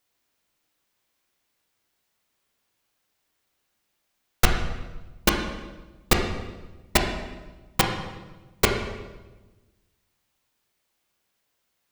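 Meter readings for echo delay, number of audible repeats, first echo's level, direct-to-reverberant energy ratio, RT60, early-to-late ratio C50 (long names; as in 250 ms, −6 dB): no echo audible, no echo audible, no echo audible, 2.0 dB, 1.2 s, 5.0 dB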